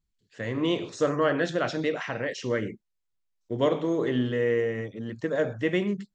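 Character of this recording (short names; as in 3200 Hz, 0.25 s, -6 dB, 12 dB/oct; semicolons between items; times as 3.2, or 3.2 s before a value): noise floor -79 dBFS; spectral tilt -5.0 dB/oct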